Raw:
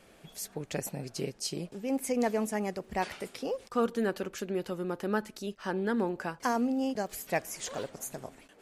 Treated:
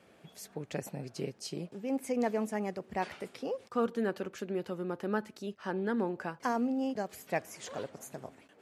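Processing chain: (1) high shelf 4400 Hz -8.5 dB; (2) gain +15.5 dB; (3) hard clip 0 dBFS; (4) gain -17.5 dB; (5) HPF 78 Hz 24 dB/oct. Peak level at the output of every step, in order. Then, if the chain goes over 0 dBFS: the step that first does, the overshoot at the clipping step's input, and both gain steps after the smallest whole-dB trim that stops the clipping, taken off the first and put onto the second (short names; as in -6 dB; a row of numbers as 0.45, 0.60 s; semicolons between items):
-17.5, -2.0, -2.0, -19.5, -17.5 dBFS; no overload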